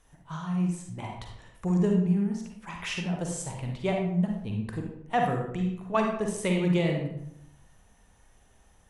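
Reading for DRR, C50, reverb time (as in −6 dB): 1.0 dB, 2.5 dB, 0.75 s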